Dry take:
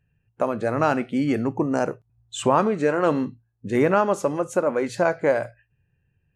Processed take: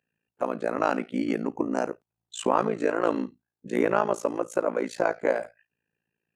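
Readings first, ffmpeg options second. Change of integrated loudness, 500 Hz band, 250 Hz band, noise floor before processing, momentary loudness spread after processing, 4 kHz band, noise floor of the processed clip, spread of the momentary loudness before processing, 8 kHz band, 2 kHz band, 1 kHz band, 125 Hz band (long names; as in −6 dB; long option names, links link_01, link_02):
−4.5 dB, −4.5 dB, −5.0 dB, −71 dBFS, 9 LU, −4.5 dB, below −85 dBFS, 9 LU, −4.5 dB, −4.0 dB, −4.0 dB, −11.5 dB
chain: -af "highpass=frequency=210:width=0.5412,highpass=frequency=210:width=1.3066,tremolo=f=56:d=0.974"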